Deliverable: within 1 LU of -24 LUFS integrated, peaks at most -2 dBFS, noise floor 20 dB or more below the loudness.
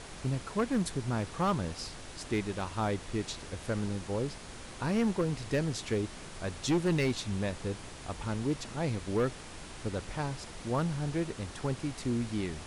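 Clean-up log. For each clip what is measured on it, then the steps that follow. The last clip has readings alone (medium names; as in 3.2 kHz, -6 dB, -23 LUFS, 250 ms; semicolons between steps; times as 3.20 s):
clipped samples 1.0%; clipping level -23.0 dBFS; noise floor -46 dBFS; noise floor target -54 dBFS; loudness -34.0 LUFS; peak level -23.0 dBFS; loudness target -24.0 LUFS
-> clip repair -23 dBFS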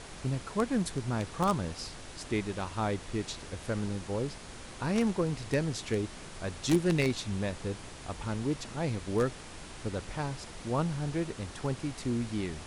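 clipped samples 0.0%; noise floor -46 dBFS; noise floor target -53 dBFS
-> noise print and reduce 7 dB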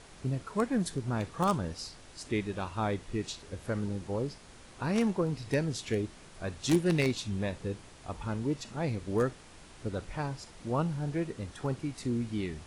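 noise floor -53 dBFS; noise floor target -54 dBFS
-> noise print and reduce 6 dB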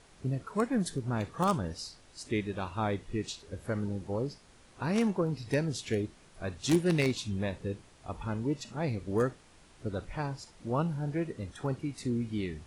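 noise floor -59 dBFS; loudness -33.5 LUFS; peak level -14.0 dBFS; loudness target -24.0 LUFS
-> trim +9.5 dB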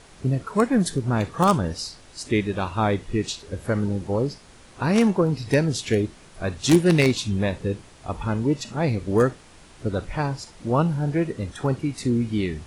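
loudness -24.0 LUFS; peak level -4.5 dBFS; noise floor -49 dBFS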